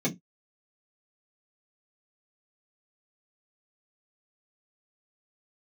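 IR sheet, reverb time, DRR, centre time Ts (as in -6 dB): not exponential, -5.0 dB, 13 ms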